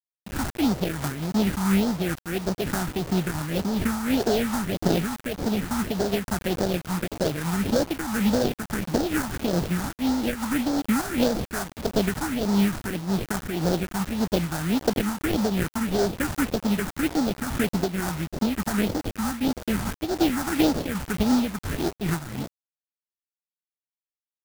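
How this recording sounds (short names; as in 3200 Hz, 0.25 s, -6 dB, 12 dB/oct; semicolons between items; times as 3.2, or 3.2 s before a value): aliases and images of a low sample rate 1100 Hz, jitter 20%; phasing stages 4, 1.7 Hz, lowest notch 450–2500 Hz; a quantiser's noise floor 6-bit, dither none; noise-modulated level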